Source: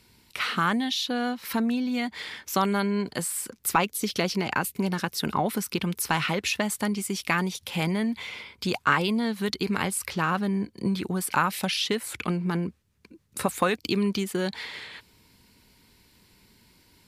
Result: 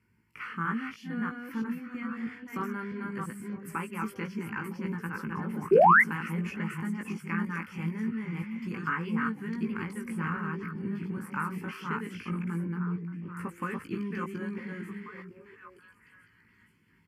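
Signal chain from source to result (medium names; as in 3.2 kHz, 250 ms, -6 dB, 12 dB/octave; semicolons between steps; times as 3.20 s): chunks repeated in reverse 324 ms, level -2 dB; high-pass 90 Hz; tone controls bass +3 dB, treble -15 dB; static phaser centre 1.6 kHz, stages 4; on a send: repeats whose band climbs or falls 479 ms, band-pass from 200 Hz, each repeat 1.4 oct, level -5 dB; on the sum: painted sound rise, 5.71–6.02 s, 350–2200 Hz -10 dBFS; doubling 18 ms -4.5 dB; trim -9 dB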